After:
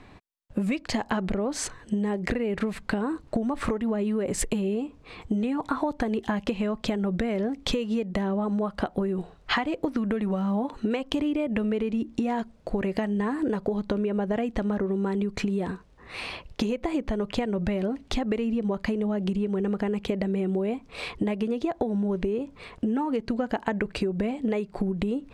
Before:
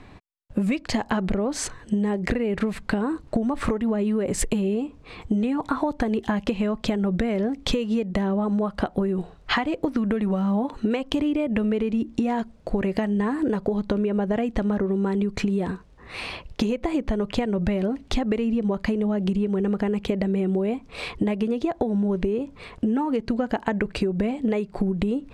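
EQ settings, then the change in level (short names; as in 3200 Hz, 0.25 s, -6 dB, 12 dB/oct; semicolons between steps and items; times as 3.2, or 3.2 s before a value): low shelf 210 Hz -3 dB; -2.0 dB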